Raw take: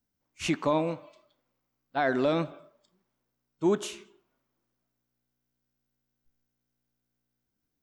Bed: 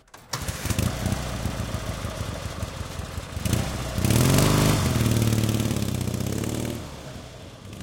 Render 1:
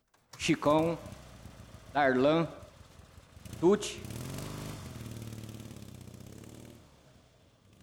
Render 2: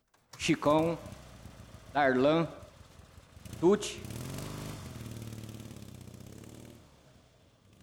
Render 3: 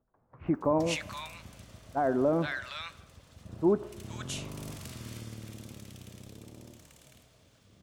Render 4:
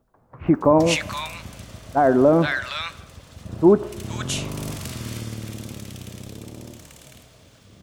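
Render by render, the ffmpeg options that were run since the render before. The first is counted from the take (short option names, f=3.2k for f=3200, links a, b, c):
-filter_complex "[1:a]volume=-21.5dB[a];[0:a][a]amix=inputs=2:normalize=0"
-af anull
-filter_complex "[0:a]acrossover=split=1300[a][b];[b]adelay=470[c];[a][c]amix=inputs=2:normalize=0"
-af "volume=11dB"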